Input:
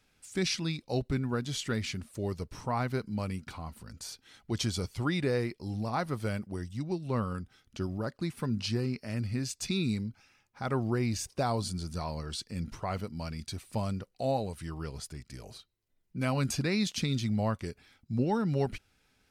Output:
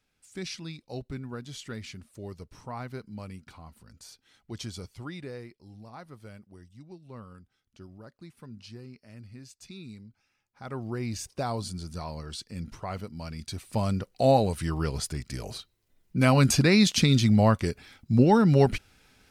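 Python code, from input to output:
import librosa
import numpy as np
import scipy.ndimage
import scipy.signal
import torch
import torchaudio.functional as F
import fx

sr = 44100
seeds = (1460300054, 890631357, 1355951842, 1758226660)

y = fx.gain(x, sr, db=fx.line((4.77, -6.5), (5.67, -13.5), (10.0, -13.5), (11.19, -1.0), (13.21, -1.0), (14.25, 9.5)))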